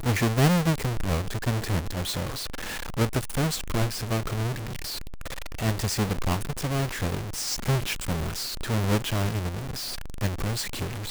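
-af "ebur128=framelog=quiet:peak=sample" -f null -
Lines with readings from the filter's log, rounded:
Integrated loudness:
  I:         -28.0 LUFS
  Threshold: -38.0 LUFS
Loudness range:
  LRA:         2.5 LU
  Threshold: -48.5 LUFS
  LRA low:   -29.5 LUFS
  LRA high:  -27.0 LUFS
Sample peak:
  Peak:      -13.1 dBFS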